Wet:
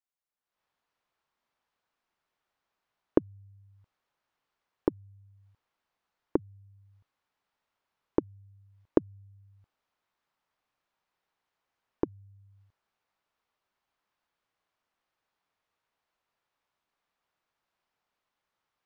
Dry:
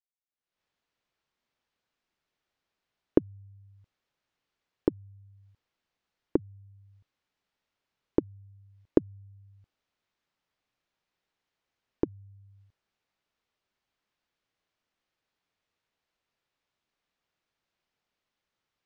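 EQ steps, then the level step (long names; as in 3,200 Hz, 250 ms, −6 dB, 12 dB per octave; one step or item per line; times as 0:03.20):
parametric band 1,000 Hz +8 dB 1.6 octaves
−3.0 dB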